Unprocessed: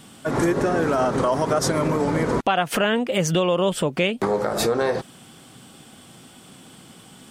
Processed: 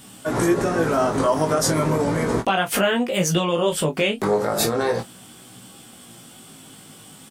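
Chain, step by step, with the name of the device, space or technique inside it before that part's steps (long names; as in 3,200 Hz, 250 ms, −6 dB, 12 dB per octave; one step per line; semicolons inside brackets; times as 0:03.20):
double-tracked vocal (double-tracking delay 26 ms −10.5 dB; chorus effect 0.36 Hz, delay 16 ms, depth 3.2 ms)
high-shelf EQ 8,400 Hz +10 dB
level +3 dB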